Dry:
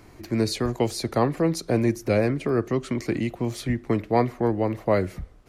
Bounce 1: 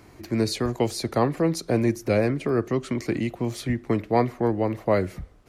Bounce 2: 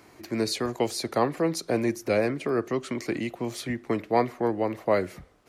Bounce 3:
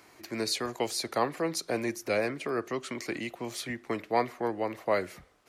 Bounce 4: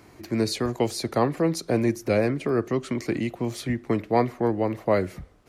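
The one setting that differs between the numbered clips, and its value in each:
high-pass filter, corner frequency: 41, 330, 920, 110 Hertz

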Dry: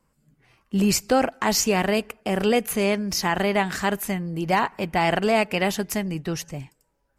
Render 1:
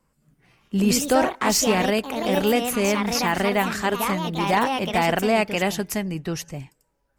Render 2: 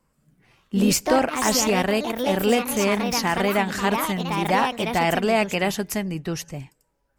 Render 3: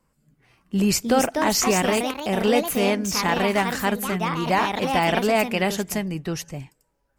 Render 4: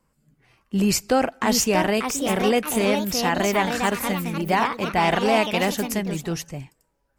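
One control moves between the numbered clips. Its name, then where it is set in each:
delay with pitch and tempo change per echo, delay time: 219, 141, 425, 813 milliseconds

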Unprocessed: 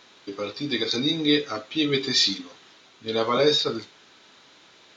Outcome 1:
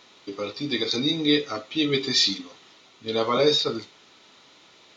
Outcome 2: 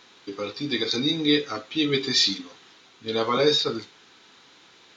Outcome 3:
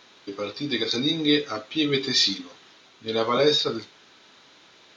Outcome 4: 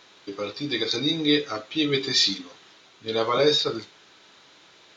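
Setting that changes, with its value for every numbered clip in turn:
notch filter, centre frequency: 1,600, 610, 7,500, 240 Hertz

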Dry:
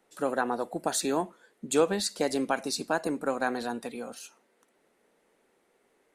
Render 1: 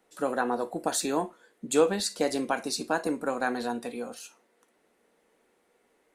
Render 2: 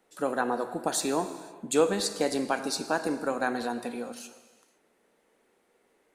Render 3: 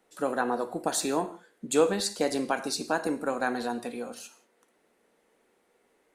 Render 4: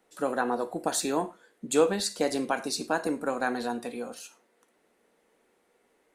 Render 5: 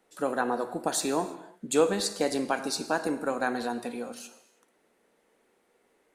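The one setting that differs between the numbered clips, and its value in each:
reverb whose tail is shaped and stops, gate: 90, 540, 210, 130, 360 milliseconds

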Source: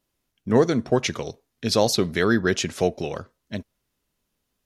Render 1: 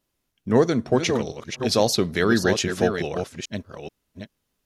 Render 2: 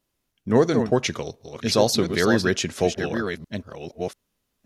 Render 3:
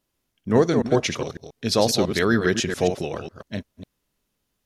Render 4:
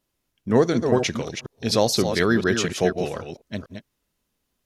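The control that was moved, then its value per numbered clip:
delay that plays each chunk backwards, delay time: 432, 689, 137, 244 milliseconds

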